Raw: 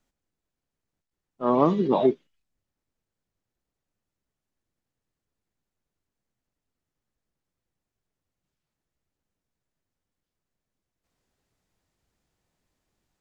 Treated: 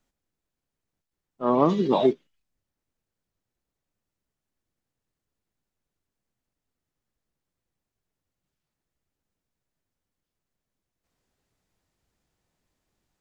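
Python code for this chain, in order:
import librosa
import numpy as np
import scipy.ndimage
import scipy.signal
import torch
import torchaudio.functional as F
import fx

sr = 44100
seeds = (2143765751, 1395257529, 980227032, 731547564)

y = fx.high_shelf(x, sr, hz=3300.0, db=11.5, at=(1.69, 2.13))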